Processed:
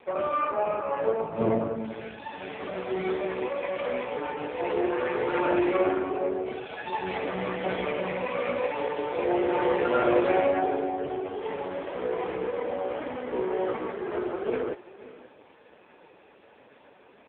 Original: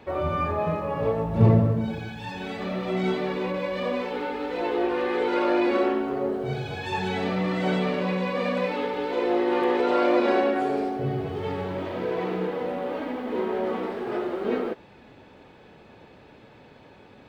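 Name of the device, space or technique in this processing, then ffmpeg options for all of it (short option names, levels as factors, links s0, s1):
satellite phone: -filter_complex "[0:a]aemphasis=mode=production:type=50fm,asettb=1/sr,asplit=3[s0][s1][s2];[s0]atrim=end=13.864[s3];[s1]atrim=start=13.86:end=14.39,asetpts=PTS-STARTPTS,afade=t=in:d=0.004:c=qsin,afade=t=out:st=0.526:d=0.004:c=qsin,lowpass=5000[s4];[s2]atrim=start=14.386[s5];[s3][s4]acrossfade=d=0.004:c1=hsin:c2=qsin[s6];[s6][s5]acrossfade=d=0.004:c1=qsin:c2=hsin,highpass=330,lowpass=3200,aecho=1:1:532:0.141,volume=1.26" -ar 8000 -c:a libopencore_amrnb -b:a 5150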